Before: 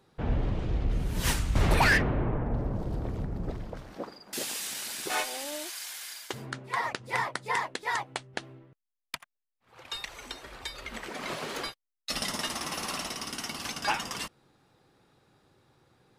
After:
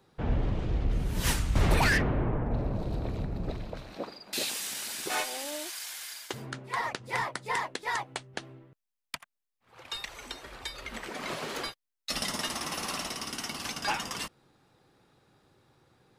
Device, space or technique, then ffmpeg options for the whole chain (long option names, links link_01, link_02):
one-band saturation: -filter_complex "[0:a]asettb=1/sr,asplit=3[link_01][link_02][link_03];[link_01]atrim=end=2.514[link_04];[link_02]atrim=start=2.51:end=4.5,asetpts=PTS-STARTPTS,afade=type=in:duration=0.004:curve=qsin,afade=type=out:start_time=1.986:duration=0.004:curve=qsin,equalizer=frequency=630:width_type=o:width=0.33:gain=3,equalizer=frequency=2500:width_type=o:width=0.33:gain=7,equalizer=frequency=4000:width_type=o:width=0.33:gain=10[link_05];[link_03]atrim=start=4.496[link_06];[link_04][link_05]acrossfade=duration=0.004:curve1=hsin:curve2=qsin[link_07];[link_07][link_06]acrossfade=duration=0.004:curve1=qsin:curve2=hsin,acrossover=split=460|3700[link_08][link_09][link_10];[link_09]asoftclip=type=tanh:threshold=-23dB[link_11];[link_08][link_11][link_10]amix=inputs=3:normalize=0"